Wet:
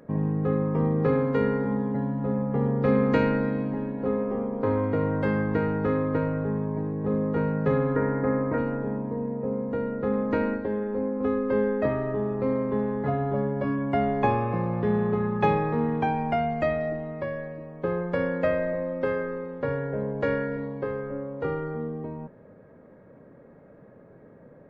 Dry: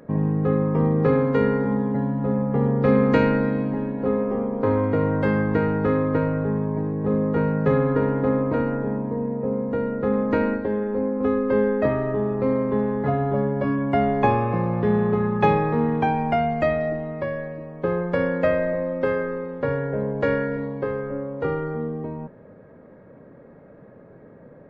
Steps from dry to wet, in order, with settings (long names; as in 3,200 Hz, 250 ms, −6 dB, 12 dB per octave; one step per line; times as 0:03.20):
0:07.96–0:08.58: high shelf with overshoot 2,500 Hz −7.5 dB, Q 3
level −4 dB